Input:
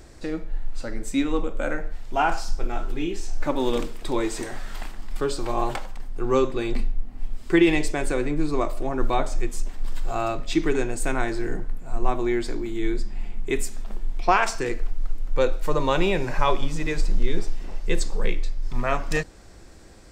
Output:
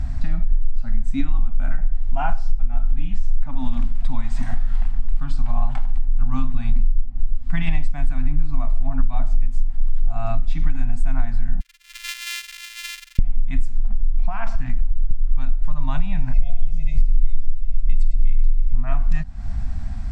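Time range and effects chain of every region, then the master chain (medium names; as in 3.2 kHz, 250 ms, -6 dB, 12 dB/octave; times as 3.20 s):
11.60–13.19 s: sorted samples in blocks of 128 samples + inverse Chebyshev high-pass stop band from 620 Hz, stop band 60 dB + treble shelf 6.6 kHz +8.5 dB
13.86–15.11 s: low-pass 3.2 kHz 6 dB/octave + compression, threshold -24 dBFS
16.33–18.75 s: brick-wall FIR band-stop 760–2000 Hz + comb 1.9 ms, depth 94% + feedback delay 101 ms, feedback 60%, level -12 dB
whole clip: elliptic band-stop 260–670 Hz; RIAA curve playback; compression 6:1, threshold -21 dBFS; trim +8 dB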